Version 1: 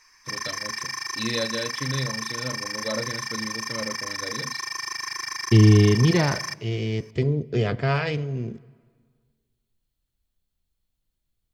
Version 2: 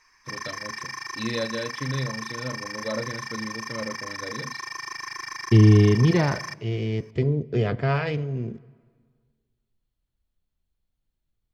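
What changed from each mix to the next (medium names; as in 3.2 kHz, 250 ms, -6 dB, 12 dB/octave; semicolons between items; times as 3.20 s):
master: add treble shelf 3.6 kHz -9.5 dB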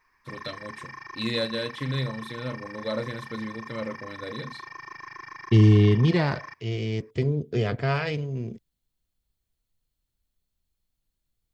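second voice: send off; background: add tape spacing loss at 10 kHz 45 dB; master: add treble shelf 3.6 kHz +9.5 dB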